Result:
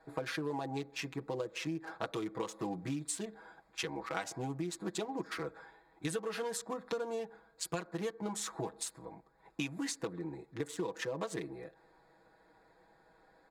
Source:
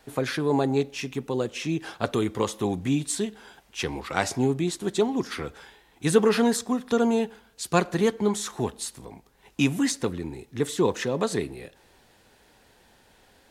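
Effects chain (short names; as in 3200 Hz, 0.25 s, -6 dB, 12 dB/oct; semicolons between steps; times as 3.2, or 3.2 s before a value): Wiener smoothing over 15 samples; low shelf 280 Hz -10.5 dB; comb 6.2 ms, depth 88%; compressor 12:1, threshold -30 dBFS, peak gain reduction 17 dB; gain -3.5 dB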